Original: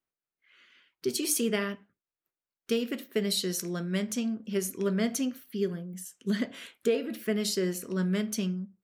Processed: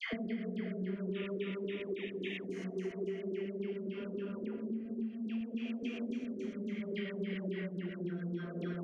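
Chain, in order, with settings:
played backwards from end to start
high-frequency loss of the air 56 metres
delay with a band-pass on its return 418 ms, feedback 71%, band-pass 890 Hz, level −10 dB
extreme stretch with random phases 6.6×, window 0.25 s, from 0:03.76
sound drawn into the spectrogram noise, 0:01.13–0:02.44, 1,700–3,800 Hz −39 dBFS
rotating-speaker cabinet horn 0.65 Hz, later 6.3 Hz, at 0:06.77
auto-filter low-pass square 3.6 Hz 360–2,500 Hz
all-pass dispersion lows, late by 134 ms, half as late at 1,000 Hz
downward compressor 6 to 1, threshold −36 dBFS, peak gain reduction 15 dB

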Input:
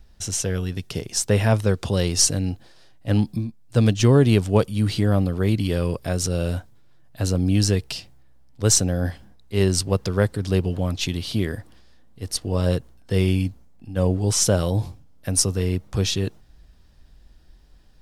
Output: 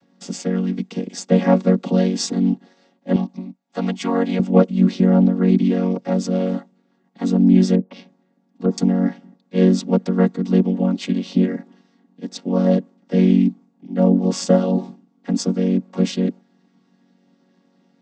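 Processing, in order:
channel vocoder with a chord as carrier major triad, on F#3
0:03.16–0:04.40: low shelf with overshoot 500 Hz −10 dB, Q 1.5
0:07.75–0:08.78: treble cut that deepens with the level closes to 720 Hz, closed at −24.5 dBFS
level +6.5 dB

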